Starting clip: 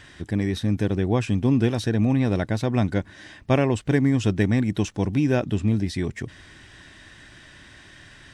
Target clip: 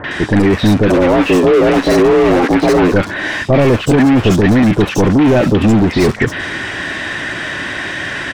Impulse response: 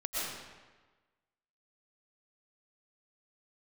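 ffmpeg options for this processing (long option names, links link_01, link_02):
-filter_complex "[0:a]asettb=1/sr,asplit=3[link_01][link_02][link_03];[link_01]atrim=end=0.904[link_04];[link_02]atrim=start=0.9:end=2.92,asetpts=PTS-STARTPTS,afade=type=in:duration=0.004:curve=qsin,afade=type=out:start_time=2.016:duration=0.004:curve=qsin,afreqshift=170[link_05];[link_03]atrim=start=2.916[link_06];[link_04][link_05]acrossfade=duration=0.004:curve1=hsin:curve2=qsin[link_07];[link_07][link_06]acrossfade=duration=0.004:curve1=qsin:curve2=hsin,asplit=2[link_08][link_09];[link_09]highpass=frequency=720:poles=1,volume=37dB,asoftclip=type=tanh:threshold=-7dB[link_10];[link_08][link_10]amix=inputs=2:normalize=0,lowpass=frequency=1300:poles=1,volume=-6dB,acrossover=split=1100|4200[link_11][link_12][link_13];[link_12]adelay=40[link_14];[link_13]adelay=110[link_15];[link_11][link_14][link_15]amix=inputs=3:normalize=0,volume=5dB"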